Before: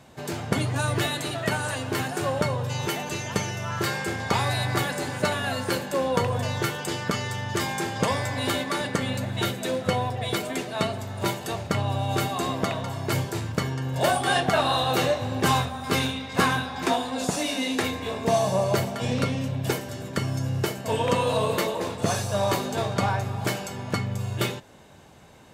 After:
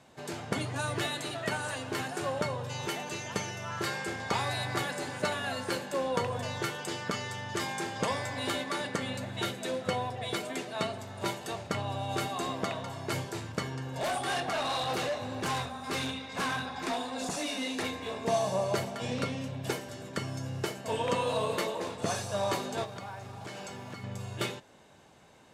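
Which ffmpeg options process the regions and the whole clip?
-filter_complex "[0:a]asettb=1/sr,asplit=3[s0][s1][s2];[s0]atrim=end=13.744[s3];[s1]atrim=start=13.74:end=17.86,asetpts=PTS-STARTPTS,afade=t=in:d=0.004:c=qsin,afade=t=out:st=4.116:d=0.004:c=qsin,aphaser=in_gain=1:out_gain=1:delay=4.8:decay=0.24:speed=1.7:type=sinusoidal,bandreject=f=3100:w=19,asoftclip=type=hard:threshold=0.075[s4];[s2]atrim=start=17.856[s5];[s3][s4]acrossfade=d=0.004:c1=hsin:c2=qsin[s6];[s6][s5]acrossfade=d=0.004:c1=qsin:c2=hsin,asettb=1/sr,asplit=3[s7][s8][s9];[s7]atrim=end=22.844[s10];[s8]atrim=start=22.84:end=24.04,asetpts=PTS-STARTPTS,afade=t=in:d=0.004:c=qsin,afade=t=out:st=1.196:d=0.004:c=qsin,lowpass=8300,acompressor=threshold=0.0316:ratio=10:attack=3.2:release=140:knee=1:detection=peak,acrusher=bits=7:mix=0:aa=0.5[s11];[s9]atrim=start=24.036[s12];[s10][s11]acrossfade=d=0.004:c1=hsin:c2=qsin[s13];[s13][s12]acrossfade=d=0.004:c1=qsin:c2=hsin,lowpass=11000,lowshelf=f=140:g=-8.5,volume=0.531"

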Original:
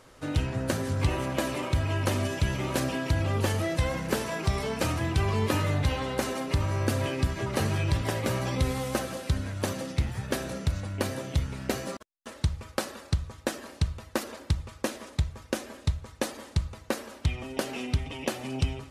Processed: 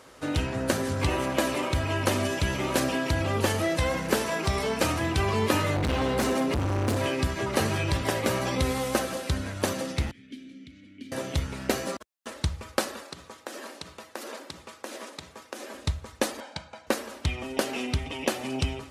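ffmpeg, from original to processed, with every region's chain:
-filter_complex "[0:a]asettb=1/sr,asplit=3[s0][s1][s2];[s0]atrim=end=5.764[s3];[s1]atrim=start=5.76:end=6.97,asetpts=PTS-STARTPTS,afade=t=in:d=0.004:c=qsin,afade=t=out:st=1.206:d=0.004:c=qsin,lowshelf=f=430:g=9,asoftclip=type=hard:threshold=0.0631[s4];[s2]atrim=start=6.966[s5];[s3][s4]acrossfade=d=0.004:c1=hsin:c2=qsin[s6];[s6][s5]acrossfade=d=0.004:c1=qsin:c2=hsin,asettb=1/sr,asplit=3[s7][s8][s9];[s7]atrim=end=10.114[s10];[s8]atrim=start=10.11:end=11.12,asetpts=PTS-STARTPTS,afade=t=in:d=0.004:c=qsin,afade=t=out:st=1.006:d=0.004:c=qsin,acrossover=split=250|3000[s11][s12][s13];[s12]acompressor=threshold=0.00631:ratio=4:attack=3.2:release=140:knee=2.83:detection=peak[s14];[s11][s14][s13]amix=inputs=3:normalize=0,asplit=3[s15][s16][s17];[s15]bandpass=f=270:t=q:w=8,volume=1[s18];[s16]bandpass=f=2290:t=q:w=8,volume=0.501[s19];[s17]bandpass=f=3010:t=q:w=8,volume=0.355[s20];[s18][s19][s20]amix=inputs=3:normalize=0[s21];[s9]atrim=start=11.116[s22];[s10][s21]acrossfade=d=0.004:c1=hsin:c2=qsin[s23];[s23][s22]acrossfade=d=0.004:c1=qsin:c2=hsin,asettb=1/sr,asplit=3[s24][s25][s26];[s24]atrim=end=13.034[s27];[s25]atrim=start=13.03:end=15.74,asetpts=PTS-STARTPTS,afade=t=in:d=0.004:c=qsin,afade=t=out:st=2.706:d=0.004:c=qsin,highpass=250,bandreject=f=60:t=h:w=6,bandreject=f=120:t=h:w=6,bandreject=f=180:t=h:w=6,bandreject=f=240:t=h:w=6,bandreject=f=300:t=h:w=6,bandreject=f=360:t=h:w=6,bandreject=f=420:t=h:w=6,bandreject=f=480:t=h:w=6,bandreject=f=540:t=h:w=6,acompressor=threshold=0.0158:ratio=12:attack=3.2:release=140:knee=1:detection=peak[s28];[s26]atrim=start=15.736[s29];[s27][s28]acrossfade=d=0.004:c1=hsin:c2=qsin[s30];[s30][s29]acrossfade=d=0.004:c1=qsin:c2=hsin,asettb=1/sr,asplit=3[s31][s32][s33];[s31]atrim=end=16.404[s34];[s32]atrim=start=16.4:end=16.87,asetpts=PTS-STARTPTS,afade=t=in:d=0.004:c=qsin,afade=t=out:st=0.466:d=0.004:c=qsin,highpass=310,lowpass=7800,highshelf=f=4700:g=-10.5,aecho=1:1:1.3:0.72,atrim=end_sample=20727[s35];[s33]atrim=start=16.866[s36];[s34][s35]acrossfade=d=0.004:c1=hsin:c2=qsin[s37];[s37][s36]acrossfade=d=0.004:c1=qsin:c2=hsin,highpass=63,equalizer=f=120:t=o:w=1.1:g=-7.5,volume=1.58"

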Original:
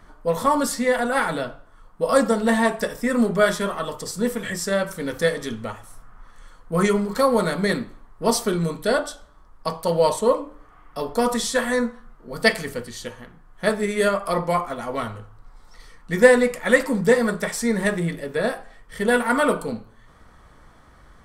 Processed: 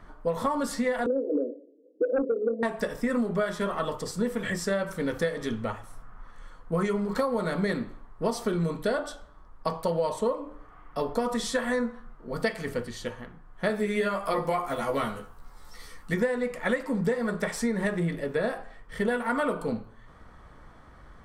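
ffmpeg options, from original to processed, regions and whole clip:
-filter_complex "[0:a]asettb=1/sr,asplit=3[s0][s1][s2];[s0]atrim=end=1.064[s3];[s1]atrim=start=1.06:end=2.63,asetpts=PTS-STARTPTS,afade=t=in:d=0.004:c=qsin,afade=t=out:st=1.566:d=0.004:c=qsin,asuperpass=centerf=370:order=12:qfactor=1.3,aeval=exprs='0.355*sin(PI/2*1.78*val(0)/0.355)':c=same[s4];[s2]atrim=start=2.626[s5];[s3][s4]acrossfade=d=0.004:c1=hsin:c2=qsin[s6];[s6][s5]acrossfade=d=0.004:c1=qsin:c2=hsin,asettb=1/sr,asplit=3[s7][s8][s9];[s7]atrim=end=13.684[s10];[s8]atrim=start=13.68:end=16.14,asetpts=PTS-STARTPTS,afade=t=in:d=0.004:c=qsin,afade=t=out:st=2.456:d=0.004:c=qsin,acrossover=split=4100[s11][s12];[s12]acompressor=threshold=0.00282:ratio=4:attack=1:release=60[s13];[s11][s13]amix=inputs=2:normalize=0,aemphasis=mode=production:type=75fm,asplit=2[s14][s15];[s15]adelay=14,volume=0.75[s16];[s14][s16]amix=inputs=2:normalize=0,atrim=end_sample=108486[s17];[s9]atrim=start=16.136[s18];[s10][s17]acrossfade=d=0.004:c1=hsin:c2=qsin[s19];[s19][s18]acrossfade=d=0.004:c1=qsin:c2=hsin,highshelf=f=4200:g=-10,acompressor=threshold=0.0708:ratio=12"

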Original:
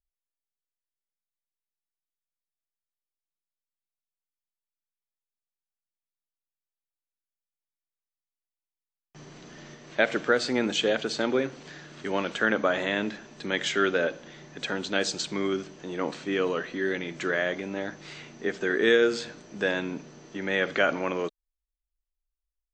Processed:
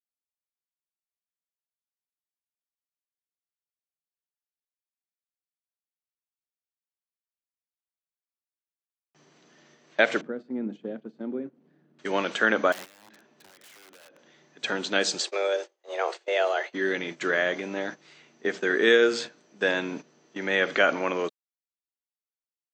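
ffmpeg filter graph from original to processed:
-filter_complex "[0:a]asettb=1/sr,asplit=3[s0][s1][s2];[s0]atrim=end=10.214[s3];[s1]atrim=start=10.21:end=11.99,asetpts=PTS-STARTPTS,afade=t=in:d=0.004:c=qsin,afade=t=out:st=1.776:d=0.004:c=qsin,bandpass=f=210:t=q:w=2.2,acompressor=mode=upward:threshold=0.01:ratio=2.5:attack=3.2:release=140:knee=2.83:detection=peak[s4];[s2]atrim=start=11.986[s5];[s3][s4]acrossfade=d=0.004:c1=hsin:c2=qsin[s6];[s6][s5]acrossfade=d=0.004:c1=qsin:c2=hsin,asettb=1/sr,asplit=3[s7][s8][s9];[s7]atrim=end=12.724[s10];[s8]atrim=start=12.72:end=14.19,asetpts=PTS-STARTPTS,afade=t=in:d=0.004:c=qsin,afade=t=out:st=1.466:d=0.004:c=qsin,lowpass=f=2600:p=1,acompressor=threshold=0.0158:ratio=10:attack=3.2:release=140:knee=1:detection=peak,aeval=exprs='(mod(59.6*val(0)+1,2)-1)/59.6':c=same[s11];[s9]atrim=start=14.186[s12];[s10][s11]acrossfade=d=0.004:c1=hsin:c2=qsin[s13];[s13][s12]acrossfade=d=0.004:c1=qsin:c2=hsin,asettb=1/sr,asplit=3[s14][s15][s16];[s14]atrim=end=15.204[s17];[s15]atrim=start=15.2:end=16.73,asetpts=PTS-STARTPTS,afade=t=in:d=0.004:c=qsin,afade=t=out:st=1.526:d=0.004:c=qsin,agate=range=0.0224:threshold=0.0158:ratio=3:release=100:detection=peak,highpass=f=75:p=1,afreqshift=200[s18];[s16]atrim=start=16.726[s19];[s17][s18]acrossfade=d=0.004:c1=hsin:c2=qsin[s20];[s20][s19]acrossfade=d=0.004:c1=qsin:c2=hsin,agate=range=0.224:threshold=0.0158:ratio=16:detection=peak,highpass=180,lowshelf=f=380:g=-3.5,volume=1.41"

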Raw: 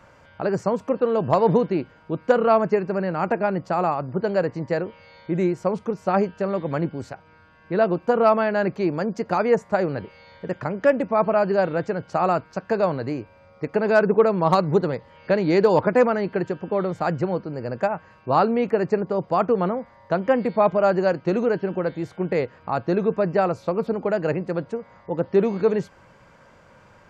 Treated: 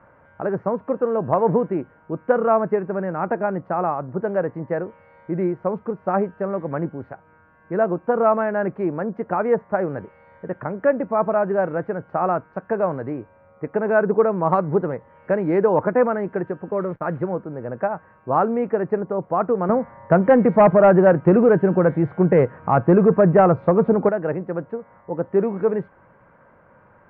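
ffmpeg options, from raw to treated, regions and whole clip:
-filter_complex "[0:a]asettb=1/sr,asplit=3[s0][s1][s2];[s0]atrim=end=16.714[s3];[s1]atrim=start=16.71:end=17.27,asetpts=PTS-STARTPTS,afade=t=in:d=0.004:c=qsin,afade=t=out:st=0.556:d=0.004:c=qsin,bandreject=f=760:w=6.4,agate=range=0.0224:threshold=0.0282:ratio=3:release=100:detection=peak,acrusher=bits=8:dc=4:mix=0:aa=0.000001[s4];[s2]atrim=start=17.266[s5];[s3][s4]acrossfade=d=0.004:c1=hsin:c2=qsin[s6];[s6][s5]acrossfade=d=0.004:c1=qsin:c2=hsin,asettb=1/sr,asplit=3[s7][s8][s9];[s7]atrim=end=19.694[s10];[s8]atrim=start=19.69:end=24.09,asetpts=PTS-STARTPTS,afade=t=in:d=0.004:c=qsin,afade=t=out:st=4.396:d=0.004:c=qsin,aeval=exprs='0.447*sin(PI/2*1.58*val(0)/0.447)':c=same,equalizer=f=140:t=o:w=0.84:g=6.5[s11];[s9]atrim=start=24.086[s12];[s10][s11]acrossfade=d=0.004:c1=hsin:c2=qsin[s13];[s13][s12]acrossfade=d=0.004:c1=qsin:c2=hsin,lowpass=f=1800:w=0.5412,lowpass=f=1800:w=1.3066,lowshelf=f=86:g=-6.5"

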